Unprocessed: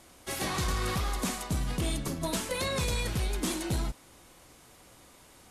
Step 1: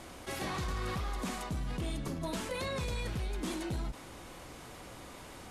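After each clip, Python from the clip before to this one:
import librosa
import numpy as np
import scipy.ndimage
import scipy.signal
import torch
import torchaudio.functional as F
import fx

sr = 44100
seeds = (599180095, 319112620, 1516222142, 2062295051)

y = fx.high_shelf(x, sr, hz=4900.0, db=-9.5)
y = fx.env_flatten(y, sr, amount_pct=50)
y = F.gain(torch.from_numpy(y), -6.5).numpy()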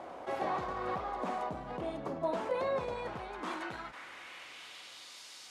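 y = fx.filter_sweep_bandpass(x, sr, from_hz=700.0, to_hz=4800.0, start_s=2.92, end_s=5.2, q=1.6)
y = F.gain(torch.from_numpy(y), 9.0).numpy()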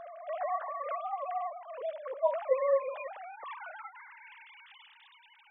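y = fx.sine_speech(x, sr)
y = F.gain(torch.from_numpy(y), 2.5).numpy()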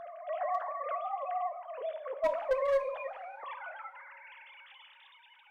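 y = fx.clip_asym(x, sr, top_db=-24.5, bottom_db=-22.0)
y = fx.rev_double_slope(y, sr, seeds[0], early_s=0.53, late_s=3.6, knee_db=-18, drr_db=10.5)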